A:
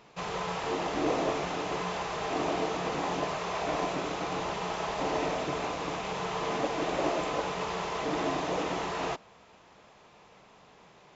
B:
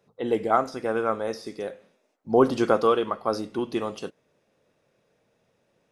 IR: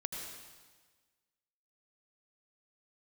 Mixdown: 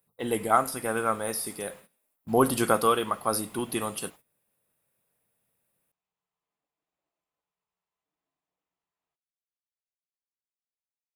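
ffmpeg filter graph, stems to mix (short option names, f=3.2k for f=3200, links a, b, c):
-filter_complex "[0:a]volume=-19.5dB[a];[1:a]agate=range=-13dB:threshold=-49dB:ratio=16:detection=peak,volume=3dB,asplit=2[b][c];[c]apad=whole_len=496354[d];[a][d]sidechaingate=range=-37dB:threshold=-39dB:ratio=16:detection=peak[e];[e][b]amix=inputs=2:normalize=0,equalizer=f=420:t=o:w=1.9:g=-8,aexciter=amount=8.3:drive=9.2:freq=8.9k"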